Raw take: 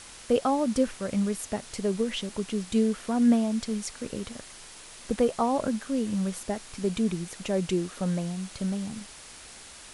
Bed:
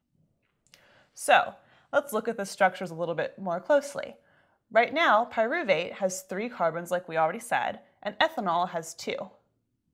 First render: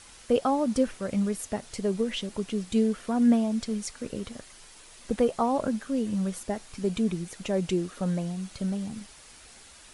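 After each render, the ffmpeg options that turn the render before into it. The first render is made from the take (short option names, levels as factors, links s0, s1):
-af "afftdn=nr=6:nf=-47"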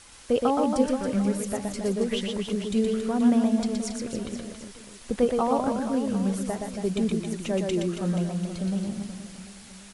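-af "aecho=1:1:120|276|478.8|742.4|1085:0.631|0.398|0.251|0.158|0.1"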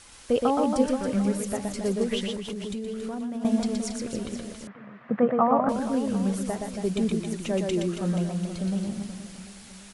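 -filter_complex "[0:a]asettb=1/sr,asplit=3[s0][s1][s2];[s0]atrim=end=2.344[s3];[s1]atrim=start=2.34:end=3.45,asetpts=PTS-STARTPTS,afade=t=in:d=0.004:c=qsin,afade=t=out:st=1.106:d=0.004:c=qsin,acompressor=threshold=0.0355:ratio=12:attack=3.2:release=140:knee=1:detection=peak[s4];[s2]atrim=start=3.446[s5];[s3][s4]acrossfade=d=0.004:c1=hsin:c2=qsin[s6];[s6][s5]acrossfade=d=0.004:c1=qsin:c2=hsin,asettb=1/sr,asplit=3[s7][s8][s9];[s7]atrim=end=4.674[s10];[s8]atrim=start=4.67:end=5.69,asetpts=PTS-STARTPTS,afade=t=in:d=0.004:c=qsin,afade=t=out:st=1.016:d=0.004:c=qsin,highpass=f=120:w=0.5412,highpass=f=120:w=1.3066,equalizer=f=140:t=q:w=4:g=9,equalizer=f=210:t=q:w=4:g=4,equalizer=f=390:t=q:w=4:g=-6,equalizer=f=660:t=q:w=4:g=6,equalizer=f=1200:t=q:w=4:g=8,equalizer=f=1800:t=q:w=4:g=5,lowpass=f=2100:w=0.5412,lowpass=f=2100:w=1.3066[s11];[s9]atrim=start=5.686[s12];[s10][s11]acrossfade=d=0.004:c1=hsin:c2=qsin[s13];[s13][s12]acrossfade=d=0.004:c1=qsin:c2=hsin"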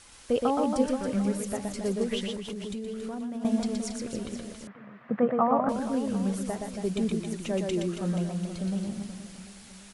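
-af "volume=0.75"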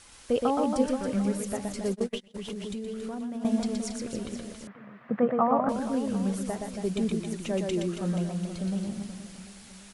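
-filter_complex "[0:a]asplit=3[s0][s1][s2];[s0]afade=t=out:st=1.93:d=0.02[s3];[s1]agate=range=0.0282:threshold=0.0355:ratio=16:release=100:detection=peak,afade=t=in:st=1.93:d=0.02,afade=t=out:st=2.34:d=0.02[s4];[s2]afade=t=in:st=2.34:d=0.02[s5];[s3][s4][s5]amix=inputs=3:normalize=0"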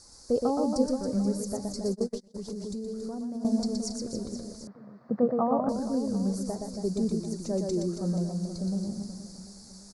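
-af "firequalizer=gain_entry='entry(480,0);entry(3000,-28);entry(4500,6);entry(9000,-3)':delay=0.05:min_phase=1"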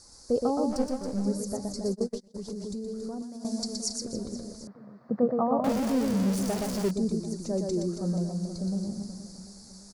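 -filter_complex "[0:a]asplit=3[s0][s1][s2];[s0]afade=t=out:st=0.69:d=0.02[s3];[s1]aeval=exprs='if(lt(val(0),0),0.447*val(0),val(0))':c=same,afade=t=in:st=0.69:d=0.02,afade=t=out:st=1.25:d=0.02[s4];[s2]afade=t=in:st=1.25:d=0.02[s5];[s3][s4][s5]amix=inputs=3:normalize=0,asettb=1/sr,asplit=3[s6][s7][s8];[s6]atrim=end=3.224[s9];[s7]atrim=start=3.22:end=4.05,asetpts=PTS-STARTPTS,afade=t=in:d=0.004:c=qsin,afade=t=out:st=0.826:d=0.004:c=qsin,tiltshelf=f=1500:g=-6.5[s10];[s8]atrim=start=4.046[s11];[s9][s10]acrossfade=d=0.004:c1=hsin:c2=qsin[s12];[s12][s11]acrossfade=d=0.004:c1=qsin:c2=hsin,asettb=1/sr,asplit=3[s13][s14][s15];[s13]atrim=end=5.644[s16];[s14]atrim=start=5.64:end=6.91,asetpts=PTS-STARTPTS,afade=t=in:d=0.004:c=qsin,afade=t=out:st=1.266:d=0.004:c=qsin,aeval=exprs='val(0)+0.5*0.0335*sgn(val(0))':c=same[s17];[s15]atrim=start=6.906[s18];[s16][s17]acrossfade=d=0.004:c1=hsin:c2=qsin[s19];[s19][s18]acrossfade=d=0.004:c1=qsin:c2=hsin"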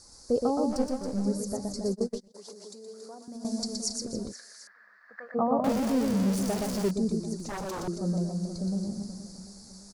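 -filter_complex "[0:a]asettb=1/sr,asplit=3[s0][s1][s2];[s0]atrim=end=2.324[s3];[s1]atrim=start=2.32:end=3.28,asetpts=PTS-STARTPTS,afade=t=in:d=0.004:c=qsin,afade=t=out:st=0.956:d=0.004:c=qsin,highpass=590[s4];[s2]atrim=start=3.276[s5];[s3][s4]acrossfade=d=0.004:c1=hsin:c2=qsin[s6];[s6][s5]acrossfade=d=0.004:c1=qsin:c2=hsin,asplit=3[s7][s8][s9];[s7]afade=t=out:st=4.31:d=0.02[s10];[s8]highpass=f=1700:t=q:w=8.7,afade=t=in:st=4.31:d=0.02,afade=t=out:st=5.34:d=0.02[s11];[s9]afade=t=in:st=5.34:d=0.02[s12];[s10][s11][s12]amix=inputs=3:normalize=0,asettb=1/sr,asplit=3[s13][s14][s15];[s13]atrim=end=7.354[s16];[s14]atrim=start=7.35:end=7.88,asetpts=PTS-STARTPTS,afade=t=in:d=0.004:c=qsin,afade=t=out:st=0.526:d=0.004:c=qsin,aeval=exprs='0.0316*(abs(mod(val(0)/0.0316+3,4)-2)-1)':c=same[s17];[s15]atrim=start=7.876[s18];[s16][s17]acrossfade=d=0.004:c1=hsin:c2=qsin[s19];[s19][s18]acrossfade=d=0.004:c1=qsin:c2=hsin"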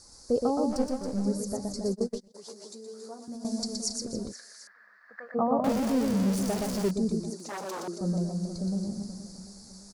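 -filter_complex "[0:a]asettb=1/sr,asplit=3[s0][s1][s2];[s0]atrim=end=2.424[s3];[s1]atrim=start=2.42:end=3.35,asetpts=PTS-STARTPTS,afade=t=in:d=0.004:c=qsin,afade=t=out:st=0.926:d=0.004:c=qsin,asplit=2[s4][s5];[s5]adelay=13,volume=0.631[s6];[s4][s6]amix=inputs=2:normalize=0,atrim=end_sample=41013[s7];[s2]atrim=start=3.346[s8];[s3][s7]acrossfade=d=0.004:c1=hsin:c2=qsin[s9];[s9][s8]acrossfade=d=0.004:c1=qsin:c2=hsin,asettb=1/sr,asplit=3[s10][s11][s12];[s10]atrim=end=7.304[s13];[s11]atrim=start=7.3:end=8.01,asetpts=PTS-STARTPTS,afade=t=in:d=0.004:c=qsin,afade=t=out:st=0.706:d=0.004:c=qsin,highpass=300[s14];[s12]atrim=start=8.006[s15];[s13][s14]acrossfade=d=0.004:c1=hsin:c2=qsin[s16];[s16][s15]acrossfade=d=0.004:c1=qsin:c2=hsin"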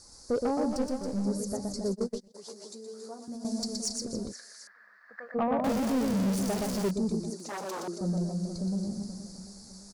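-af "asoftclip=type=tanh:threshold=0.0891"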